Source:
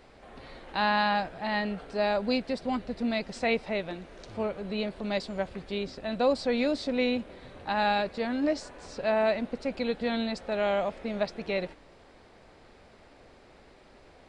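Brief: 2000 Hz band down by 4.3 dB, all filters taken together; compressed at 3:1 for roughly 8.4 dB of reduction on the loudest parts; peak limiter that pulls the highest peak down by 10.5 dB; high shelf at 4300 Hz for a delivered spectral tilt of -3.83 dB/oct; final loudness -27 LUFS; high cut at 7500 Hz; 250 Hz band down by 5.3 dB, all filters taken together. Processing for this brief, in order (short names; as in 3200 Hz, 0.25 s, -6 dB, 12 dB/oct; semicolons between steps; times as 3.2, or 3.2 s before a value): LPF 7500 Hz; bell 250 Hz -6 dB; bell 2000 Hz -4 dB; high shelf 4300 Hz -7 dB; compressor 3:1, threshold -34 dBFS; gain +16.5 dB; limiter -17.5 dBFS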